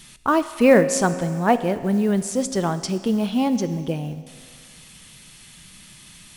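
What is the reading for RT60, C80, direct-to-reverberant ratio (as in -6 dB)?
2.1 s, 14.0 dB, 11.5 dB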